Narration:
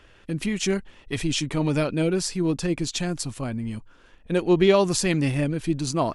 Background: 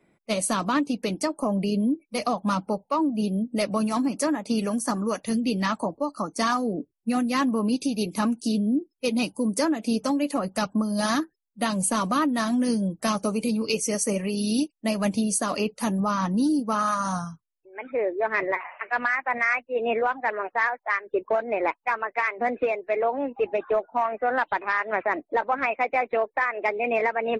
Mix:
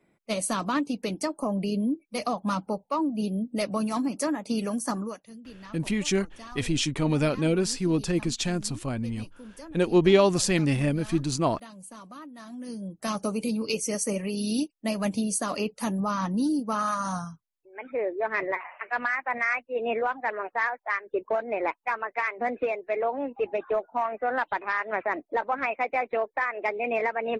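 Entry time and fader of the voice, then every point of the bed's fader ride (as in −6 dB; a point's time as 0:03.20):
5.45 s, −1.0 dB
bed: 0:05.00 −3 dB
0:05.28 −20.5 dB
0:12.36 −20.5 dB
0:13.20 −3 dB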